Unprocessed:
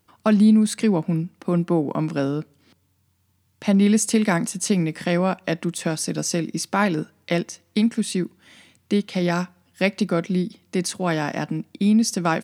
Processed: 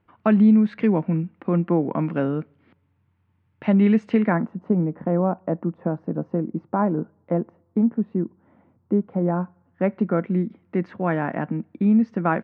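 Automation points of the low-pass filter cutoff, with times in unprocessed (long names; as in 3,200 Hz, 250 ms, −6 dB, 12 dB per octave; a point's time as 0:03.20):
low-pass filter 24 dB per octave
0:04.11 2,400 Hz
0:04.60 1,100 Hz
0:09.35 1,100 Hz
0:10.28 1,900 Hz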